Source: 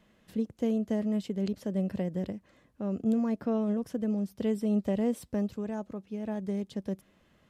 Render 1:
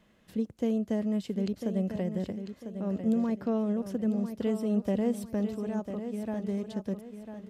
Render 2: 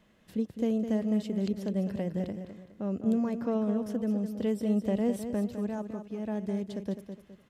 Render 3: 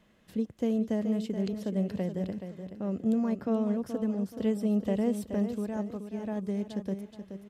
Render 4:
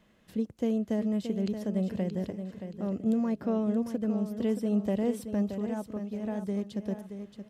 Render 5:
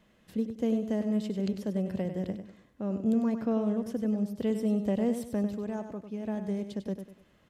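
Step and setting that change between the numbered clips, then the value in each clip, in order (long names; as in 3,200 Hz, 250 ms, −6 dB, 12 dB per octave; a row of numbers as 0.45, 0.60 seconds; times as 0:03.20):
repeating echo, delay time: 998, 207, 426, 625, 98 milliseconds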